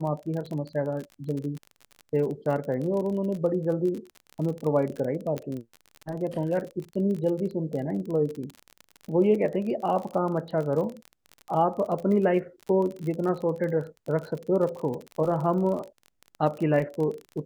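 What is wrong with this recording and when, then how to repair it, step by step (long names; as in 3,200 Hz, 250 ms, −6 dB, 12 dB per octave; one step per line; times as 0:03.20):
surface crackle 38 per second −32 dBFS
0:05.38: click −19 dBFS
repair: click removal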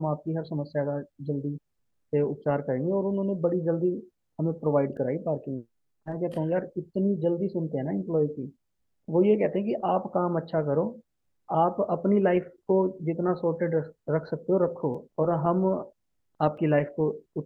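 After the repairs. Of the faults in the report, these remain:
none of them is left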